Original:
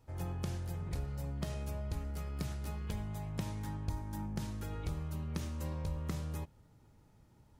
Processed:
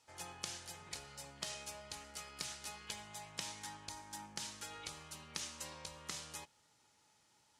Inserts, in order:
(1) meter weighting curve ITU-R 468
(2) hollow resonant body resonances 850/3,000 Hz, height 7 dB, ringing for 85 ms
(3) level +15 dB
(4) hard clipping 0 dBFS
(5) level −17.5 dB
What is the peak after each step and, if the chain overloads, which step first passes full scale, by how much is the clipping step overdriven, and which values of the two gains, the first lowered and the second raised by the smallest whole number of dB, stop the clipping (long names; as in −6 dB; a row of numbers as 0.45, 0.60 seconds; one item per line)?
−17.5, −17.5, −2.5, −2.5, −20.0 dBFS
no step passes full scale